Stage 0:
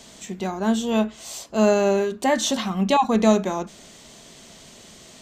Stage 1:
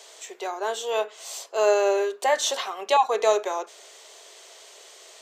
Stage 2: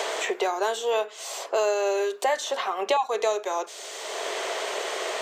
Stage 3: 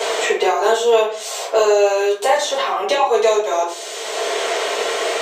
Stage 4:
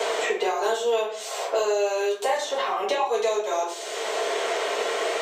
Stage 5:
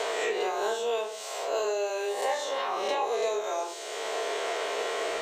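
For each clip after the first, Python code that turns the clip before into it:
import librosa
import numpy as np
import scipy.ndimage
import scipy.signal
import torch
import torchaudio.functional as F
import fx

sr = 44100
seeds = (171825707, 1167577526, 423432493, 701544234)

y1 = scipy.signal.sosfilt(scipy.signal.ellip(4, 1.0, 60, 410.0, 'highpass', fs=sr, output='sos'), x)
y2 = fx.band_squash(y1, sr, depth_pct=100)
y2 = F.gain(torch.from_numpy(y2), -1.5).numpy()
y3 = fx.room_shoebox(y2, sr, seeds[0], volume_m3=33.0, walls='mixed', distance_m=1.5)
y4 = fx.band_squash(y3, sr, depth_pct=70)
y4 = F.gain(torch.from_numpy(y4), -8.5).numpy()
y5 = fx.spec_swells(y4, sr, rise_s=0.83)
y5 = F.gain(torch.from_numpy(y5), -7.0).numpy()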